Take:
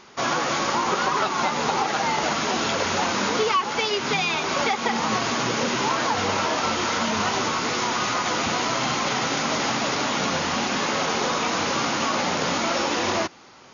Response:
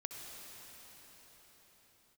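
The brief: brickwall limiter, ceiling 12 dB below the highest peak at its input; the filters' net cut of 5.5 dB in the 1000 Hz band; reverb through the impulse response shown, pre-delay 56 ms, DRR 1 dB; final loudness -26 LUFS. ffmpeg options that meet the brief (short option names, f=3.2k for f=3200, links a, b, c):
-filter_complex "[0:a]equalizer=f=1k:t=o:g=-7,alimiter=limit=-24dB:level=0:latency=1,asplit=2[a][b];[1:a]atrim=start_sample=2205,adelay=56[c];[b][c]afir=irnorm=-1:irlink=0,volume=0.5dB[d];[a][d]amix=inputs=2:normalize=0,volume=3dB"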